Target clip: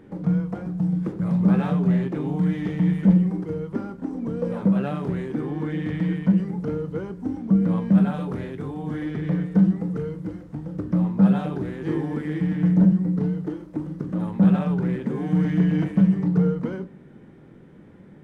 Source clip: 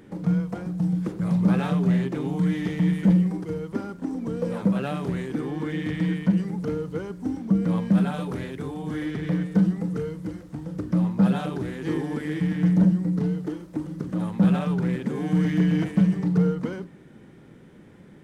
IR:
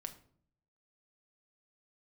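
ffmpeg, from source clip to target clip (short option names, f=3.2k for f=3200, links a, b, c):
-filter_complex "[0:a]highshelf=f=2.8k:g=-11.5,asplit=2[a][b];[1:a]atrim=start_sample=2205,adelay=21[c];[b][c]afir=irnorm=-1:irlink=0,volume=-7.5dB[d];[a][d]amix=inputs=2:normalize=0,volume=1dB"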